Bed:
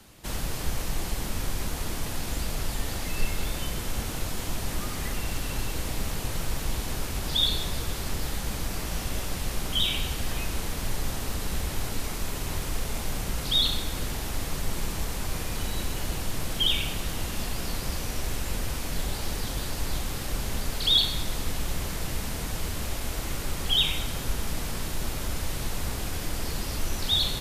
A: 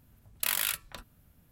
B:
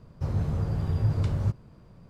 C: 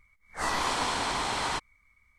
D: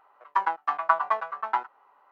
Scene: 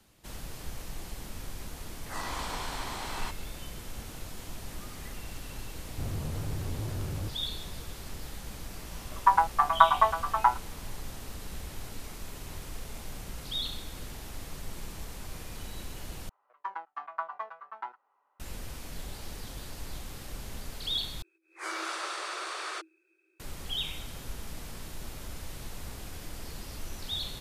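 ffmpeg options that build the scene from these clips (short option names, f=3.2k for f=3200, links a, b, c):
-filter_complex "[3:a]asplit=2[a][b];[4:a]asplit=2[c][d];[0:a]volume=-10.5dB[e];[2:a]asoftclip=type=hard:threshold=-29.5dB[f];[c]equalizer=f=870:w=0.76:g=8.5[g];[b]afreqshift=320[h];[e]asplit=3[i][j][k];[i]atrim=end=16.294[l];[d]atrim=end=2.11,asetpts=PTS-STARTPTS,volume=-13dB[m];[j]atrim=start=18.396:end=21.224[n];[h]atrim=end=2.18,asetpts=PTS-STARTPTS,volume=-7dB[o];[k]atrim=start=23.396[p];[a]atrim=end=2.18,asetpts=PTS-STARTPTS,volume=-8.5dB,afade=t=in:d=0.004:c=hsin,afade=t=out:st=2.176:d=0.004:c=hsin,adelay=1720[q];[f]atrim=end=2.09,asetpts=PTS-STARTPTS,volume=-3.5dB,afade=t=in:d=0.004:c=hsin,afade=t=out:st=2.086:d=0.004:c=hsin,adelay=254457S[r];[g]atrim=end=2.11,asetpts=PTS-STARTPTS,volume=-4.5dB,afade=t=in:d=0.004:c=hsin,afade=t=out:st=2.106:d=0.004:c=hsin,adelay=8910[s];[l][m]acrossfade=d=0.004:c1=hsin:c2=hsin[t];[t][n]acrossfade=d=0.004:c1=hsin:c2=hsin[u];[u][o]acrossfade=d=0.004:c1=hsin:c2=hsin[v];[v][p]acrossfade=d=0.004:c1=hsin:c2=hsin[w];[w][q][r][s]amix=inputs=4:normalize=0"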